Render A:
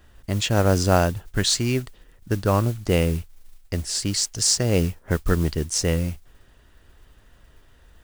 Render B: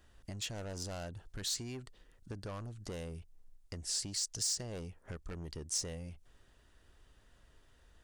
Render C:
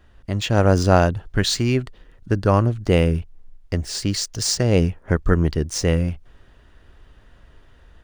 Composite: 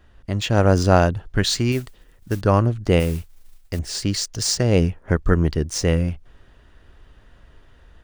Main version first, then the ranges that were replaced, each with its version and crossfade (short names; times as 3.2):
C
1.72–2.41 from A
3–3.79 from A
not used: B